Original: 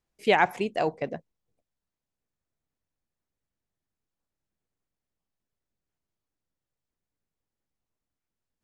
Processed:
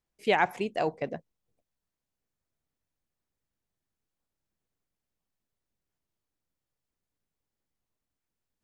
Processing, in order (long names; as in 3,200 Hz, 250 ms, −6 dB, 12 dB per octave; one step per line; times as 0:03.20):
speech leveller 2 s
level −3 dB